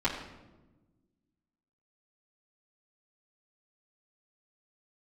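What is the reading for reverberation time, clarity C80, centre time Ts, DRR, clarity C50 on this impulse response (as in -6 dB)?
1.1 s, 8.0 dB, 30 ms, -10.5 dB, 6.5 dB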